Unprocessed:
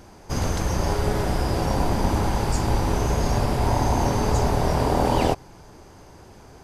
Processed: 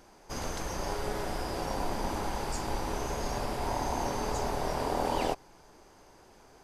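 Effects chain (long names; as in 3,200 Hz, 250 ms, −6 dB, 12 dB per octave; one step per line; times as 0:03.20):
parametric band 94 Hz −11.5 dB 2.4 octaves
level −7 dB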